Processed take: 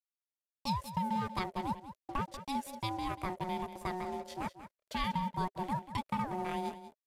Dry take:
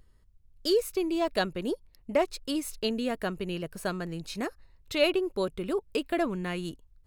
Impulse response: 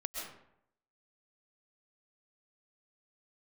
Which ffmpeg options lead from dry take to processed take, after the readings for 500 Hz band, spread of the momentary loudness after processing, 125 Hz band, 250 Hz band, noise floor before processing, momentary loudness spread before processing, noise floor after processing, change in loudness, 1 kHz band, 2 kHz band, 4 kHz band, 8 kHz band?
−15.0 dB, 7 LU, −0.5 dB, −7.5 dB, −62 dBFS, 9 LU, below −85 dBFS, −7.0 dB, +3.0 dB, −8.5 dB, −10.0 dB, −10.0 dB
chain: -af "equalizer=frequency=350:width_type=o:width=0.35:gain=7.5,acrusher=bits=7:mix=0:aa=0.5,acompressor=threshold=-23dB:ratio=6,aeval=exprs='sgn(val(0))*max(abs(val(0))-0.00562,0)':channel_layout=same,aeval=exprs='val(0)*sin(2*PI*550*n/s)':channel_layout=same,equalizer=frequency=400:width_type=o:width=0.33:gain=7,equalizer=frequency=630:width_type=o:width=0.33:gain=10,equalizer=frequency=2000:width_type=o:width=0.33:gain=3,aecho=1:1:188:0.237,aresample=32000,aresample=44100,volume=-4.5dB"

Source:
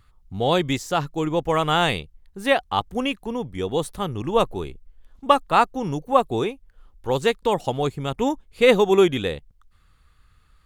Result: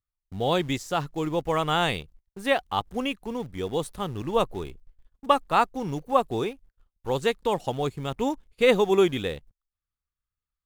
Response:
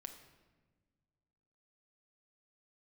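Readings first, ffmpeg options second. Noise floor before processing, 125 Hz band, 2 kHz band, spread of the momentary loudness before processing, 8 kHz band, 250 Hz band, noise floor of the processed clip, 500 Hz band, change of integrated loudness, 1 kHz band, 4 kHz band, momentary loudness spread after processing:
−59 dBFS, −4.0 dB, −4.0 dB, 12 LU, −4.0 dB, −4.0 dB, below −85 dBFS, −4.0 dB, −4.0 dB, −4.0 dB, −4.0 dB, 12 LU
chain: -filter_complex "[0:a]agate=range=-28dB:threshold=-44dB:ratio=16:detection=peak,asplit=2[link_01][link_02];[link_02]acrusher=bits=6:dc=4:mix=0:aa=0.000001,volume=-12dB[link_03];[link_01][link_03]amix=inputs=2:normalize=0,volume=-6dB"

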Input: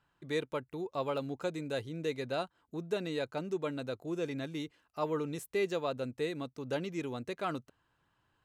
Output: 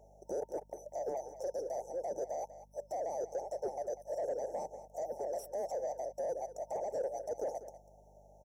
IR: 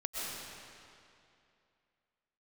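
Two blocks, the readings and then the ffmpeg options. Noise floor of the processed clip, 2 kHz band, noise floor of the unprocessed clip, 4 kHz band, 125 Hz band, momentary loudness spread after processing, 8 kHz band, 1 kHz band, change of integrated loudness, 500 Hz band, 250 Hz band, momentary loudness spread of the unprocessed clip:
−61 dBFS, below −15 dB, −78 dBFS, below −15 dB, −19.0 dB, 6 LU, +2.5 dB, 0.0 dB, −2.5 dB, −1.0 dB, −16.0 dB, 5 LU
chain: -filter_complex "[0:a]afftfilt=real='real(if(lt(b,920),b+92*(1-2*mod(floor(b/92),2)),b),0)':imag='imag(if(lt(b,920),b+92*(1-2*mod(floor(b/92),2)),b),0)':win_size=2048:overlap=0.75,afftfilt=real='re*(1-between(b*sr/4096,910,5300))':imag='im*(1-between(b*sr/4096,910,5300))':win_size=4096:overlap=0.75,highpass=frequency=570:width_type=q:width=4.9,equalizer=frequency=5600:width_type=o:width=0.22:gain=6,asplit=2[link_01][link_02];[link_02]acompressor=threshold=-56dB:ratio=10,volume=-2.5dB[link_03];[link_01][link_03]amix=inputs=2:normalize=0,alimiter=level_in=18.5dB:limit=-24dB:level=0:latency=1:release=12,volume=-18.5dB,acontrast=64,aeval=exprs='val(0)+0.000141*(sin(2*PI*50*n/s)+sin(2*PI*2*50*n/s)/2+sin(2*PI*3*50*n/s)/3+sin(2*PI*4*50*n/s)/4+sin(2*PI*5*50*n/s)/5)':channel_layout=same,asoftclip=type=tanh:threshold=-39.5dB,tiltshelf=frequency=970:gain=9.5,aecho=1:1:194:0.2,volume=5.5dB"

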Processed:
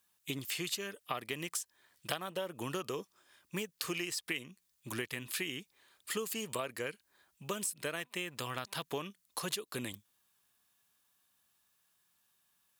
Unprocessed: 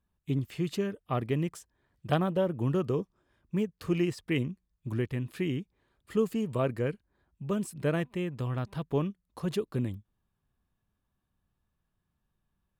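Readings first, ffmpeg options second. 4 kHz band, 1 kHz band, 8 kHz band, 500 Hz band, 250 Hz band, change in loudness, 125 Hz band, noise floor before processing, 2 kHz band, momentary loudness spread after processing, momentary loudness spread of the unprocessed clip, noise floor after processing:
+5.5 dB, −4.0 dB, +10.5 dB, −9.5 dB, −13.0 dB, −7.0 dB, −16.5 dB, −82 dBFS, +1.5 dB, 9 LU, 8 LU, −77 dBFS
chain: -af "highpass=frequency=1400:poles=1,highshelf=frequency=3200:gain=11.5,acompressor=threshold=-42dB:ratio=10,volume=8.5dB"

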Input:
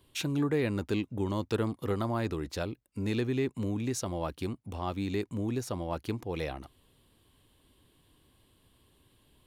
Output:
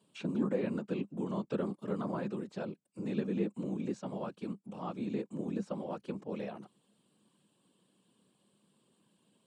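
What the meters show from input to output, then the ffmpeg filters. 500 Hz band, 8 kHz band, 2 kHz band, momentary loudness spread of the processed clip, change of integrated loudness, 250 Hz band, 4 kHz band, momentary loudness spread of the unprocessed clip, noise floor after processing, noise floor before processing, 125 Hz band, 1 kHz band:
−4.0 dB, below −15 dB, −9.5 dB, 8 LU, −4.5 dB, −2.5 dB, −13.0 dB, 7 LU, −74 dBFS, −68 dBFS, −8.0 dB, −6.0 dB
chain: -filter_complex "[0:a]acrossover=split=3500[link_01][link_02];[link_02]acompressor=threshold=-60dB:ratio=4:attack=1:release=60[link_03];[link_01][link_03]amix=inputs=2:normalize=0,afftfilt=real='hypot(re,im)*cos(2*PI*random(0))':imag='hypot(re,im)*sin(2*PI*random(1))':win_size=512:overlap=0.75,highpass=frequency=150:width=0.5412,highpass=frequency=150:width=1.3066,equalizer=frequency=200:width_type=q:width=4:gain=9,equalizer=frequency=530:width_type=q:width=4:gain=3,equalizer=frequency=2000:width_type=q:width=4:gain=-7,equalizer=frequency=3600:width_type=q:width=4:gain=-3,equalizer=frequency=7900:width_type=q:width=4:gain=8,lowpass=frequency=9300:width=0.5412,lowpass=frequency=9300:width=1.3066"

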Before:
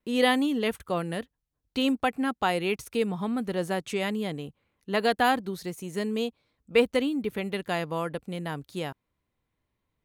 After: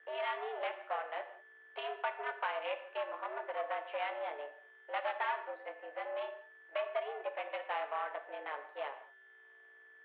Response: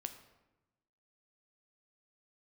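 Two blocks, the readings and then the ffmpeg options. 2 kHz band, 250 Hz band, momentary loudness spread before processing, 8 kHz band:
−9.0 dB, −34.5 dB, 12 LU, below −35 dB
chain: -filter_complex "[0:a]acompressor=threshold=-26dB:ratio=6,aeval=exprs='val(0)+0.00447*(sin(2*PI*60*n/s)+sin(2*PI*2*60*n/s)/2+sin(2*PI*3*60*n/s)/3+sin(2*PI*4*60*n/s)/4+sin(2*PI*5*60*n/s)/5)':channel_layout=same,flanger=delay=6.3:depth=5.1:regen=-45:speed=0.24:shape=triangular,aeval=exprs='val(0)+0.00224*sin(2*PI*1600*n/s)':channel_layout=same,aeval=exprs='val(0)*gte(abs(val(0)),0.002)':channel_layout=same,afreqshift=36,aeval=exprs='(tanh(31.6*val(0)+0.65)-tanh(0.65))/31.6':channel_layout=same,adynamicsmooth=sensitivity=7:basefreq=1400[link_01];[1:a]atrim=start_sample=2205,afade=type=out:start_time=0.26:duration=0.01,atrim=end_sample=11907[link_02];[link_01][link_02]afir=irnorm=-1:irlink=0,highpass=frequency=470:width_type=q:width=0.5412,highpass=frequency=470:width_type=q:width=1.307,lowpass=frequency=3000:width_type=q:width=0.5176,lowpass=frequency=3000:width_type=q:width=0.7071,lowpass=frequency=3000:width_type=q:width=1.932,afreqshift=110,volume=7.5dB"

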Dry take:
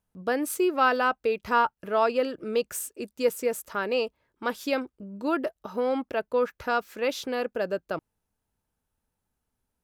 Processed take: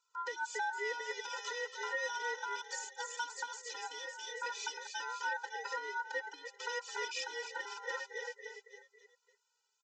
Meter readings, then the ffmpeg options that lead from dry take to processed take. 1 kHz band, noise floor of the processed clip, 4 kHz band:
−11.5 dB, −81 dBFS, −4.0 dB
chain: -filter_complex "[0:a]asplit=6[link_01][link_02][link_03][link_04][link_05][link_06];[link_02]adelay=275,afreqshift=64,volume=-12.5dB[link_07];[link_03]adelay=550,afreqshift=128,volume=-18.5dB[link_08];[link_04]adelay=825,afreqshift=192,volume=-24.5dB[link_09];[link_05]adelay=1100,afreqshift=256,volume=-30.6dB[link_10];[link_06]adelay=1375,afreqshift=320,volume=-36.6dB[link_11];[link_01][link_07][link_08][link_09][link_10][link_11]amix=inputs=6:normalize=0,alimiter=limit=-19dB:level=0:latency=1:release=71,bandreject=frequency=198.8:width_type=h:width=4,bandreject=frequency=397.6:width_type=h:width=4,bandreject=frequency=596.4:width_type=h:width=4,afftfilt=real='re*(1-between(b*sr/4096,800,3500))':imag='im*(1-between(b*sr/4096,800,3500))':win_size=4096:overlap=0.75,acrossover=split=2700[link_12][link_13];[link_13]acompressor=threshold=-49dB:ratio=4:attack=1:release=60[link_14];[link_12][link_14]amix=inputs=2:normalize=0,equalizer=frequency=150:width=1.3:gain=4,flanger=delay=0.3:depth=6.6:regen=-12:speed=0.29:shape=triangular,acompressor=threshold=-36dB:ratio=6,tiltshelf=frequency=1400:gain=-9,aeval=exprs='val(0)*sin(2*PI*1200*n/s)':channel_layout=same,aresample=16000,asoftclip=type=tanh:threshold=-39.5dB,aresample=44100,afftfilt=real='re*eq(mod(floor(b*sr/1024/260),2),1)':imag='im*eq(mod(floor(b*sr/1024/260),2),1)':win_size=1024:overlap=0.75,volume=14.5dB"

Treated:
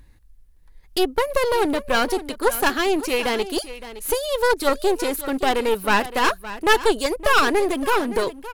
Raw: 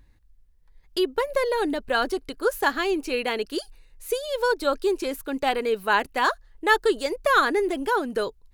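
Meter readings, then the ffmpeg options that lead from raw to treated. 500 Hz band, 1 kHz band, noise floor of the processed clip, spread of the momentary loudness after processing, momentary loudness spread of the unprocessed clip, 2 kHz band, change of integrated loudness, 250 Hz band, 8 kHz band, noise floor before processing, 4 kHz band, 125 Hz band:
+3.0 dB, +3.0 dB, −50 dBFS, 7 LU, 8 LU, +2.5 dB, +3.5 dB, +4.5 dB, +9.5 dB, −58 dBFS, +5.0 dB, can't be measured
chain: -af "equalizer=frequency=11000:width_type=o:width=0.63:gain=6.5,aeval=exprs='clip(val(0),-1,0.0316)':channel_layout=same,aecho=1:1:566:0.188,volume=6dB"

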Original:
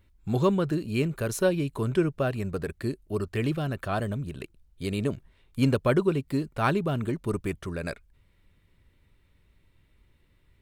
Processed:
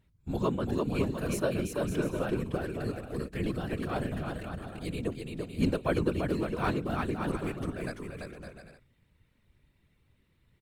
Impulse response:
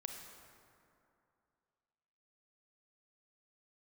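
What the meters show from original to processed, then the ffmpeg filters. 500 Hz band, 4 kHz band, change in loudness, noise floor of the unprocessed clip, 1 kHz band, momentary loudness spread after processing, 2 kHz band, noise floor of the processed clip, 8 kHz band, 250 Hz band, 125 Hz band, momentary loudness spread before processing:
−4.5 dB, −3.5 dB, −4.5 dB, −65 dBFS, −3.5 dB, 9 LU, −4.0 dB, −70 dBFS, −4.0 dB, −3.5 dB, −5.5 dB, 11 LU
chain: -af "aecho=1:1:340|561|704.6|798|858.7:0.631|0.398|0.251|0.158|0.1,afftfilt=real='hypot(re,im)*cos(2*PI*random(0))':imag='hypot(re,im)*sin(2*PI*random(1))':win_size=512:overlap=0.75"

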